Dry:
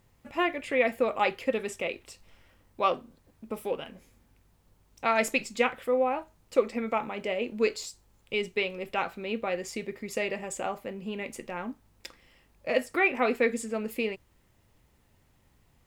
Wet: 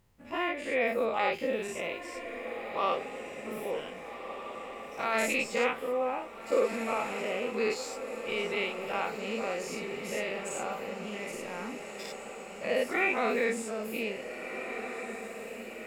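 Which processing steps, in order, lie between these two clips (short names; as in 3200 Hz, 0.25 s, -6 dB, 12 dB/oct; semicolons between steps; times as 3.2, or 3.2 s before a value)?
spectral dilation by 0.12 s; diffused feedback echo 1.661 s, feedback 60%, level -9 dB; 1.34–1.99 added noise white -62 dBFS; gain -8.5 dB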